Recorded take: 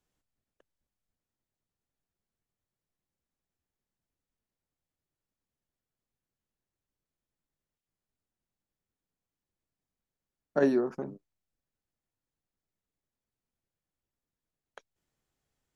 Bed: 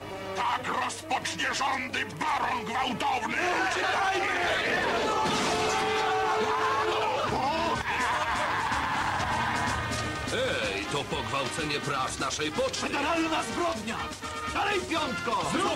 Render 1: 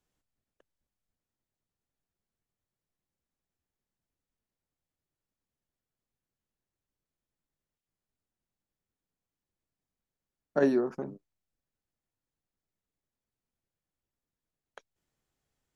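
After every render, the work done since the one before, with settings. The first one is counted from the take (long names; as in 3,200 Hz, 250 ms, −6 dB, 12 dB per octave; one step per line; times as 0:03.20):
no processing that can be heard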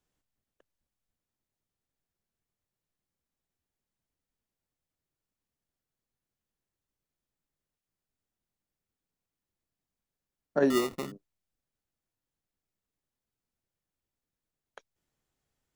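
0:10.70–0:11.12: sample-rate reduction 1,600 Hz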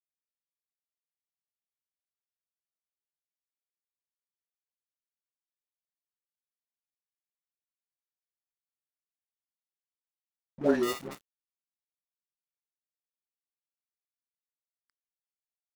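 all-pass dispersion highs, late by 128 ms, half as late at 430 Hz
dead-zone distortion −41.5 dBFS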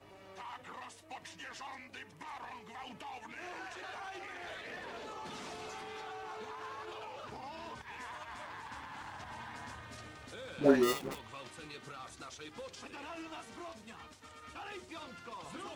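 mix in bed −18.5 dB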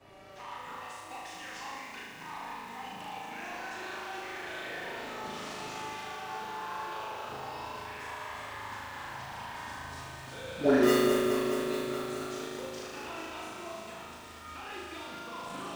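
flutter between parallel walls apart 6.5 metres, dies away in 1.3 s
feedback echo at a low word length 211 ms, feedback 80%, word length 9 bits, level −7.5 dB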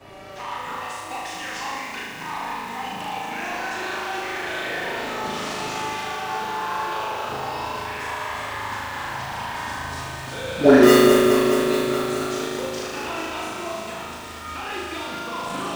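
level +11.5 dB
brickwall limiter −1 dBFS, peak gain reduction 1 dB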